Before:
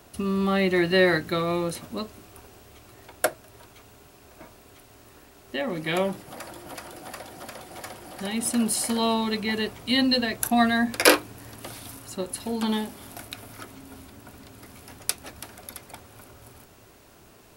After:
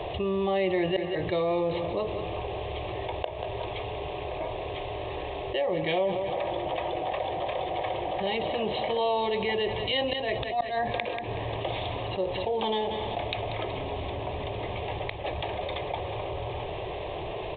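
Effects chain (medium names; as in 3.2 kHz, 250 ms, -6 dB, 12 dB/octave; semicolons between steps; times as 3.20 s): bass shelf 230 Hz -6.5 dB; inverted gate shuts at -11 dBFS, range -31 dB; treble shelf 3.1 kHz -7.5 dB; static phaser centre 590 Hz, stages 4; on a send: feedback delay 187 ms, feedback 43%, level -16 dB; on the sum: resampled via 8 kHz; level flattener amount 70%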